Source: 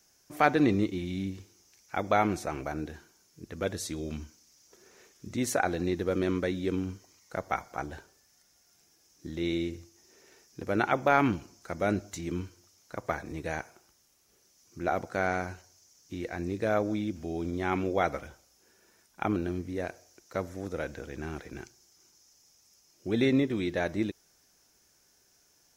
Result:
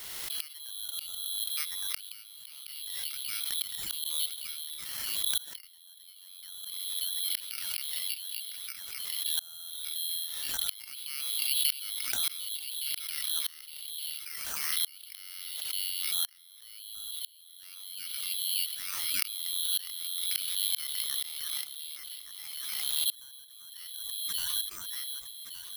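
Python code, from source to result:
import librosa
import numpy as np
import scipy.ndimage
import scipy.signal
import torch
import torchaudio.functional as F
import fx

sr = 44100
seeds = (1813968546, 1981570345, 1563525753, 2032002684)

y = fx.echo_alternate(x, sr, ms=583, hz=1000.0, feedback_pct=55, wet_db=-10.5)
y = fx.freq_invert(y, sr, carrier_hz=3600)
y = fx.gate_flip(y, sr, shuts_db=-23.0, range_db=-32)
y = (np.kron(scipy.signal.resample_poly(y, 1, 6), np.eye(6)[0]) * 6)[:len(y)]
y = fx.pre_swell(y, sr, db_per_s=25.0)
y = y * 10.0 ** (-1.0 / 20.0)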